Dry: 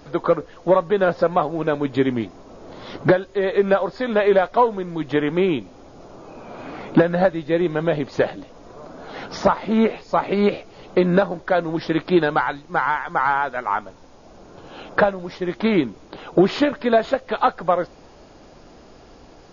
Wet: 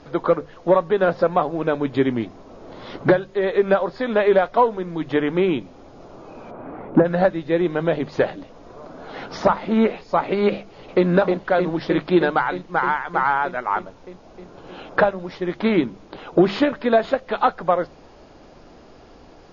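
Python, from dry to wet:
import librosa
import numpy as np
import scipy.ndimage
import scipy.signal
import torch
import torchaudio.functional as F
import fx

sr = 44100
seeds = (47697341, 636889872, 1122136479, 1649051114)

y = fx.lowpass(x, sr, hz=1200.0, slope=12, at=(6.5, 7.04), fade=0.02)
y = fx.echo_throw(y, sr, start_s=10.57, length_s=0.49, ms=310, feedback_pct=80, wet_db=-5.0)
y = scipy.signal.sosfilt(scipy.signal.bessel(2, 5100.0, 'lowpass', norm='mag', fs=sr, output='sos'), y)
y = fx.hum_notches(y, sr, base_hz=50, count=4)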